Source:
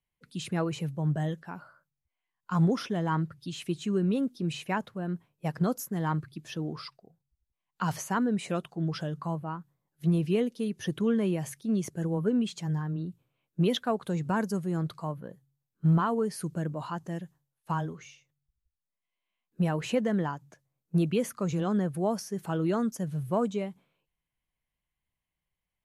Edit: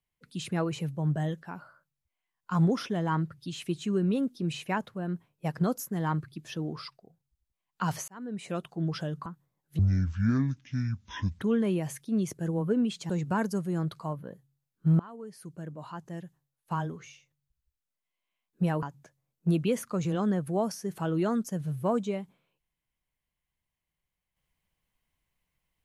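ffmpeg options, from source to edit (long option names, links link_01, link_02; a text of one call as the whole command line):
ffmpeg -i in.wav -filter_complex "[0:a]asplit=8[link_01][link_02][link_03][link_04][link_05][link_06][link_07][link_08];[link_01]atrim=end=8.08,asetpts=PTS-STARTPTS,afade=type=out:start_time=8.076:duration=0.004:curve=hsin[link_09];[link_02]atrim=start=8.08:end=9.262,asetpts=PTS-STARTPTS,afade=type=in:duration=0.63[link_10];[link_03]atrim=start=9.538:end=10.074[link_11];[link_04]atrim=start=10.07:end=10.98,asetpts=PTS-STARTPTS,asetrate=24696,aresample=44100,atrim=end_sample=71662,asetpts=PTS-STARTPTS[link_12];[link_05]atrim=start=10.976:end=12.662[link_13];[link_06]atrim=start=14.078:end=15.98,asetpts=PTS-STARTPTS,afade=type=out:start_time=1.898:duration=0.004:curve=hsin:silence=0.0891251[link_14];[link_07]atrim=start=15.98:end=19.812,asetpts=PTS-STARTPTS,afade=type=in:duration=1.98:silence=0.0891251[link_15];[link_08]atrim=start=20.298[link_16];[link_09][link_10]concat=n=2:v=0:a=1[link_17];[link_17][link_11]acrossfade=duration=0.004:curve1=hsin:curve2=hsin[link_18];[link_18][link_12]acrossfade=duration=0.004:curve1=hsin:curve2=hsin[link_19];[link_19][link_13]acrossfade=duration=0.004:curve1=hsin:curve2=hsin[link_20];[link_14][link_15]concat=n=2:v=0:a=1[link_21];[link_20][link_21]acrossfade=duration=0.004:curve1=hsin:curve2=hsin[link_22];[link_22][link_16]acrossfade=duration=0.004:curve1=hsin:curve2=hsin" out.wav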